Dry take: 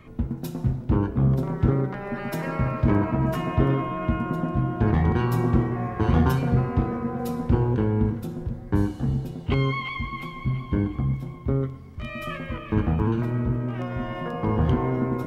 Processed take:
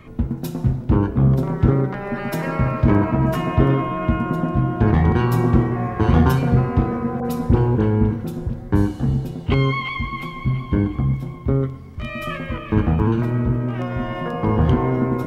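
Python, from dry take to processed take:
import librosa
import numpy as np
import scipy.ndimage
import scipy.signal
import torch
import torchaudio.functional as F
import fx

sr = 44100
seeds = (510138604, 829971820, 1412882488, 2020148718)

y = fx.dispersion(x, sr, late='highs', ms=50.0, hz=1500.0, at=(7.2, 8.7))
y = F.gain(torch.from_numpy(y), 5.0).numpy()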